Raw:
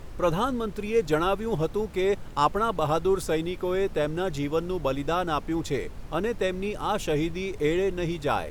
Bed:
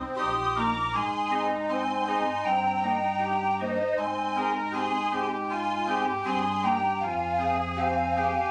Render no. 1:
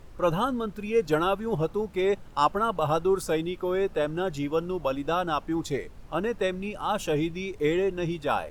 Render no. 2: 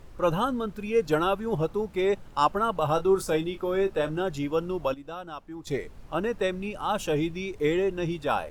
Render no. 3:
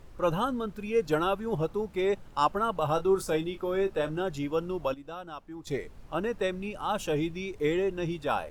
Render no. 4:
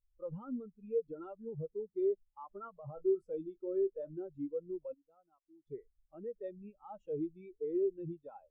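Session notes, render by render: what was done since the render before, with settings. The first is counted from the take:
noise reduction from a noise print 7 dB
0:02.94–0:04.21: double-tracking delay 26 ms −10 dB; 0:04.94–0:05.67: clip gain −11.5 dB
level −2.5 dB
brickwall limiter −23 dBFS, peak gain reduction 10.5 dB; every bin expanded away from the loudest bin 2.5 to 1

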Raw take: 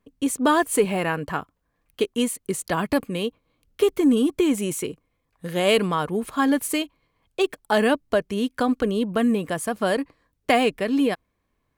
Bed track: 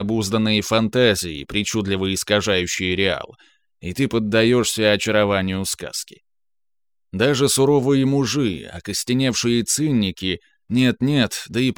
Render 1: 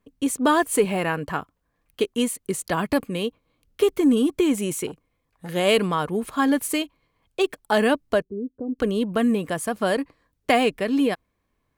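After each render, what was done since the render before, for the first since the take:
0:04.87–0:05.49: saturating transformer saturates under 550 Hz
0:08.22–0:08.79: transistor ladder low-pass 460 Hz, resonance 50%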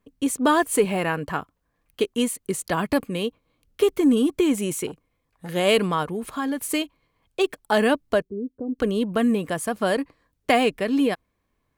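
0:06.03–0:06.69: downward compressor 2 to 1, threshold −27 dBFS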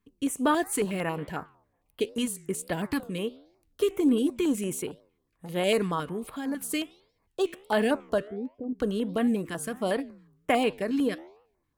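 flanger 1.4 Hz, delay 8.9 ms, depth 7.9 ms, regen −89%
notch on a step sequencer 11 Hz 600–6,200 Hz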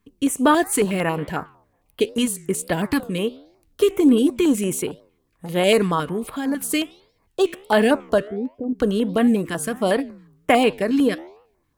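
level +8 dB

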